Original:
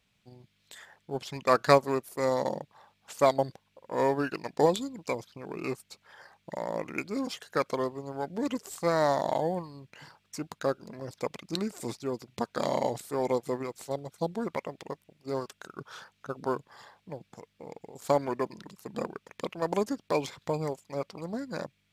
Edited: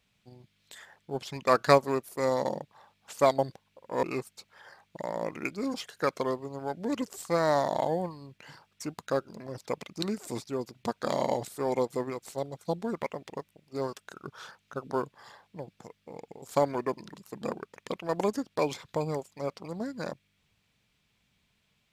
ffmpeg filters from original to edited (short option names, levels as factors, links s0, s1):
-filter_complex "[0:a]asplit=2[s0][s1];[s0]atrim=end=4.032[s2];[s1]atrim=start=5.558[s3];[s2][s3]acrossfade=d=0.004:c1=hsin:c2=hsin"